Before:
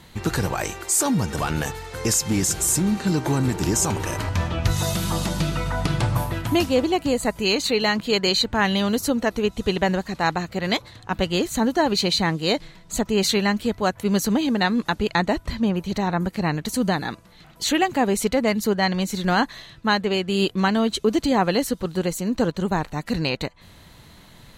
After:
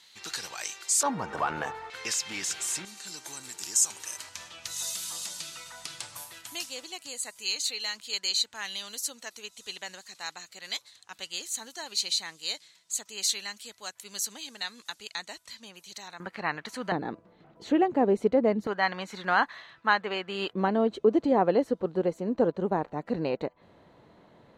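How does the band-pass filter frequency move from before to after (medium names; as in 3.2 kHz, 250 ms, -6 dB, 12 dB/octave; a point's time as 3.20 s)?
band-pass filter, Q 1.1
4.9 kHz
from 1.03 s 1 kHz
from 1.90 s 2.8 kHz
from 2.85 s 7.6 kHz
from 16.20 s 1.5 kHz
from 16.92 s 420 Hz
from 18.67 s 1.3 kHz
from 20.53 s 500 Hz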